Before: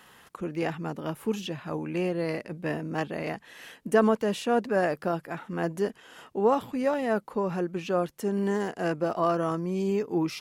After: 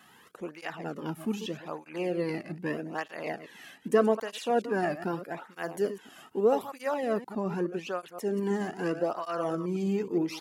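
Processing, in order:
delay that plays each chunk backwards 105 ms, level −12 dB
0:05.50–0:06.94: high-shelf EQ 11,000 Hz +11 dB
through-zero flanger with one copy inverted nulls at 0.81 Hz, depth 2.2 ms

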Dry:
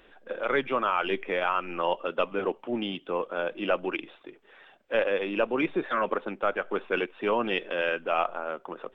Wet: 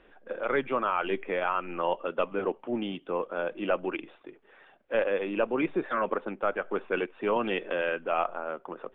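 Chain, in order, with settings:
high-frequency loss of the air 320 metres
0:07.36–0:07.78: multiband upward and downward compressor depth 70%

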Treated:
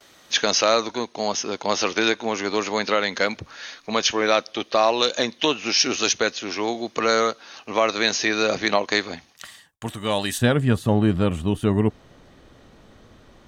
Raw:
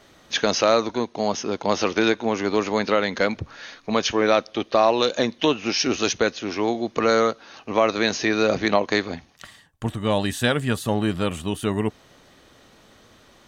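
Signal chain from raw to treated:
spectral tilt +2 dB per octave, from 0:10.37 −2 dB per octave
noise gate with hold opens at −43 dBFS

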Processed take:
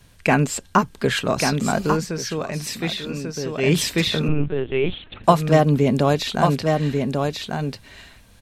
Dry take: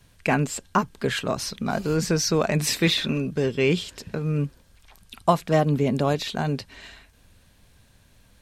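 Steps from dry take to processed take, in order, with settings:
single-tap delay 1,142 ms −4.5 dB
0:01.85–0:03.77: duck −9.5 dB, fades 0.22 s
0:04.28–0:05.24: linear-prediction vocoder at 8 kHz pitch kept
level +4.5 dB

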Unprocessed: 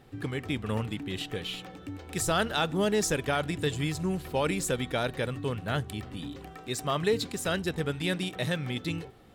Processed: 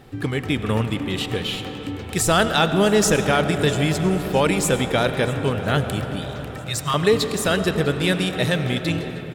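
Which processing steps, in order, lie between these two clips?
0:06.22–0:06.94: elliptic band-stop filter 160–910 Hz
repeating echo 652 ms, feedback 59%, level −21 dB
on a send at −8 dB: convolution reverb RT60 5.3 s, pre-delay 55 ms
on the sum: level +9 dB

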